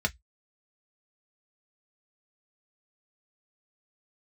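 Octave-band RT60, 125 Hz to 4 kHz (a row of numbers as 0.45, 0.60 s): 0.20, 0.10, 0.05, 0.10, 0.15, 0.15 s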